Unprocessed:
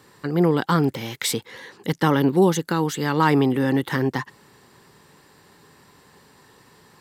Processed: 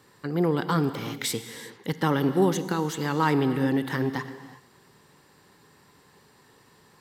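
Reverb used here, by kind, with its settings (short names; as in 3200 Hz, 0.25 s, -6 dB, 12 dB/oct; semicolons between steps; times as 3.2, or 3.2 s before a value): non-linear reverb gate 0.4 s flat, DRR 10.5 dB; gain -5 dB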